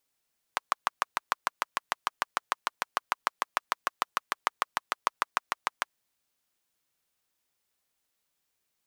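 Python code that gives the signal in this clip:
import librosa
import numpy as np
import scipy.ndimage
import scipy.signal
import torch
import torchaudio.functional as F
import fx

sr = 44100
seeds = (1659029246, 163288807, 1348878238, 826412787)

y = fx.engine_single(sr, seeds[0], length_s=5.37, rpm=800, resonances_hz=(1100.0,))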